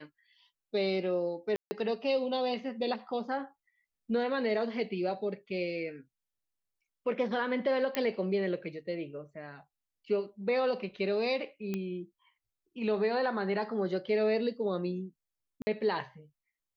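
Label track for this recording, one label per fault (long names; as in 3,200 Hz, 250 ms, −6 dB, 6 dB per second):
1.560000	1.710000	drop-out 150 ms
7.950000	7.950000	click −16 dBFS
11.740000	11.740000	click −21 dBFS
15.620000	15.670000	drop-out 50 ms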